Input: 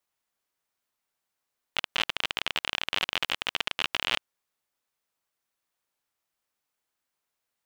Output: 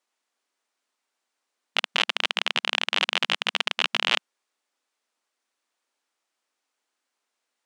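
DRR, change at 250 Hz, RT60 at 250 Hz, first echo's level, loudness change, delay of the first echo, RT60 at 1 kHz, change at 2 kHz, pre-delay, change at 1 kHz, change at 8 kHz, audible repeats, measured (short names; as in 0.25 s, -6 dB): none, +3.5 dB, none, none, +5.0 dB, none, none, +5.0 dB, none, +5.0 dB, +4.0 dB, none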